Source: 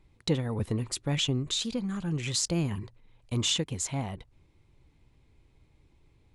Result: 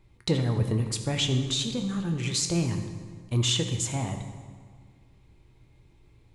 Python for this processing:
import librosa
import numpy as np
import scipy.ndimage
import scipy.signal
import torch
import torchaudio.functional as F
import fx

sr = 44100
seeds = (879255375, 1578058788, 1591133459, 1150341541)

y = fx.rider(x, sr, range_db=10, speed_s=2.0)
y = fx.rev_fdn(y, sr, rt60_s=1.8, lf_ratio=1.1, hf_ratio=0.7, size_ms=50.0, drr_db=4.5)
y = F.gain(torch.from_numpy(y), 1.0).numpy()